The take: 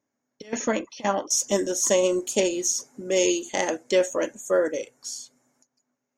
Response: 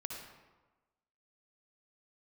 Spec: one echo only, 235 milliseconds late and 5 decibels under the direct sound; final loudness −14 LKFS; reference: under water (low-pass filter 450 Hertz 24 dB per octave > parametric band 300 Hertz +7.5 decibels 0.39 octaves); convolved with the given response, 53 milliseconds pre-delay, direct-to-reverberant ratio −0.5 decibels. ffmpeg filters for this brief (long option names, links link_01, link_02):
-filter_complex "[0:a]aecho=1:1:235:0.562,asplit=2[link_01][link_02];[1:a]atrim=start_sample=2205,adelay=53[link_03];[link_02][link_03]afir=irnorm=-1:irlink=0,volume=1.5dB[link_04];[link_01][link_04]amix=inputs=2:normalize=0,lowpass=frequency=450:width=0.5412,lowpass=frequency=450:width=1.3066,equalizer=frequency=300:width_type=o:width=0.39:gain=7.5,volume=9dB"